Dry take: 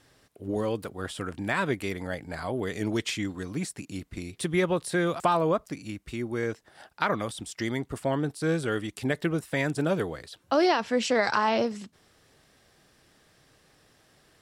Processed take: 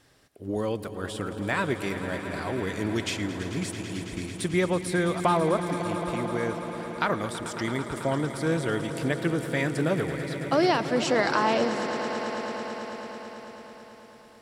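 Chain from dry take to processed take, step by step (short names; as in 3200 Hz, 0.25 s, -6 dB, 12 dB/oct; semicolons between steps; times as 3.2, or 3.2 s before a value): swelling echo 0.11 s, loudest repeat 5, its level -14 dB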